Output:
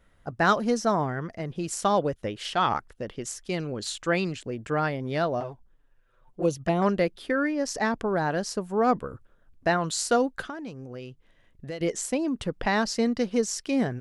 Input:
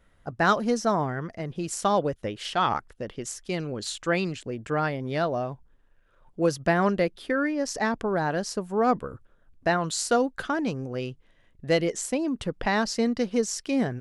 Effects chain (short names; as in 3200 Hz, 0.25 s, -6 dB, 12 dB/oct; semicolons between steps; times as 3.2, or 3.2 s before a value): 5.4–6.82 envelope flanger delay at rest 8.5 ms, full sweep at -19.5 dBFS; 10.4–11.81 compressor 3:1, threshold -38 dBFS, peak gain reduction 14.5 dB